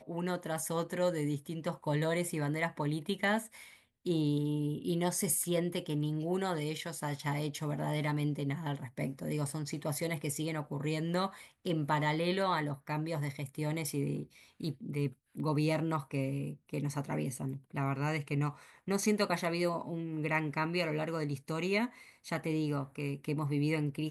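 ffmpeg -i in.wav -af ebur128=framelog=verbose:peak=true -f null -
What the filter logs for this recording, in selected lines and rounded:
Integrated loudness:
  I:         -34.5 LUFS
  Threshold: -44.6 LUFS
Loudness range:
  LRA:         2.7 LU
  Threshold: -54.6 LUFS
  LRA low:   -36.0 LUFS
  LRA high:  -33.3 LUFS
True peak:
  Peak:      -17.1 dBFS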